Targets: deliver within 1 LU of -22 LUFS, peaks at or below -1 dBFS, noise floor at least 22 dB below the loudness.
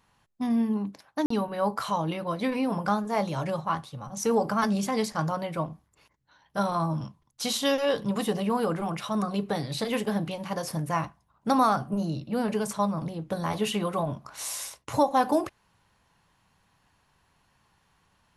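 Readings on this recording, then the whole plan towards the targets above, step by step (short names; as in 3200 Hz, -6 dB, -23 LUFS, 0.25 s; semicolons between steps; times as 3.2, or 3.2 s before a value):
dropouts 1; longest dropout 44 ms; loudness -28.5 LUFS; peak -10.5 dBFS; loudness target -22.0 LUFS
-> interpolate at 1.26, 44 ms; gain +6.5 dB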